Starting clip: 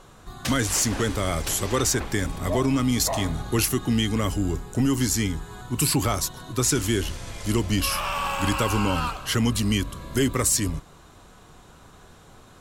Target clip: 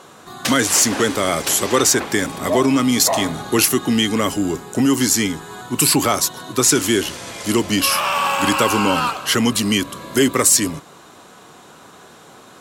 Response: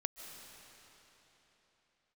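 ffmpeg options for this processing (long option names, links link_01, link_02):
-af "highpass=220,volume=8.5dB"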